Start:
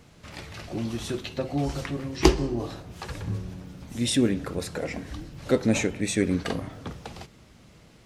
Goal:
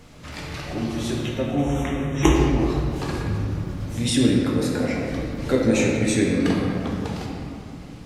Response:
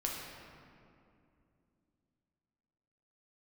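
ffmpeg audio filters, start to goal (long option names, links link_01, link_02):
-filter_complex "[0:a]asplit=2[link_01][link_02];[link_02]acompressor=threshold=-38dB:ratio=6,volume=-1dB[link_03];[link_01][link_03]amix=inputs=2:normalize=0,asettb=1/sr,asplit=3[link_04][link_05][link_06];[link_04]atrim=end=1.164[link_07];[link_05]atrim=start=1.16:end=2.35,asetpts=PTS-STARTPTS,afade=type=in:duration=0.004:curve=qsin,afade=type=out:start_time=1.186:duration=0.004:curve=qsin,asuperstop=centerf=4600:order=20:qfactor=2.7[link_08];[link_06]atrim=start=2.346[link_09];[link_07][link_08]acrossfade=duration=0.004:curve1=hsin:curve2=qsin[link_10];[link_10][link_09]acrossfade=duration=0.004:curve1=qsin:curve2=hsin[link_11];[1:a]atrim=start_sample=2205,asetrate=42777,aresample=44100[link_12];[link_11][link_12]afir=irnorm=-1:irlink=0"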